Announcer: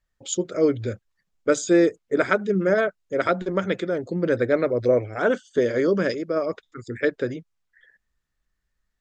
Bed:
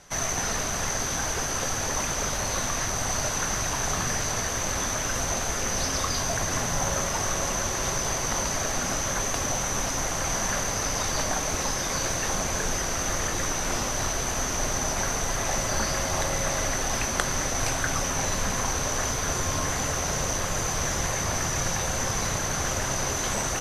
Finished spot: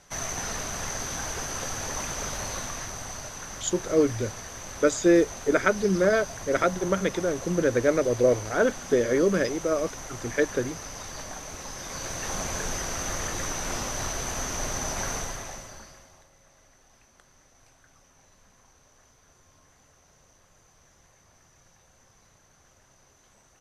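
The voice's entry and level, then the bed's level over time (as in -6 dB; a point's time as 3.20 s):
3.35 s, -1.5 dB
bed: 2.43 s -4.5 dB
3.31 s -11.5 dB
11.63 s -11.5 dB
12.40 s -3.5 dB
15.17 s -3.5 dB
16.30 s -32.5 dB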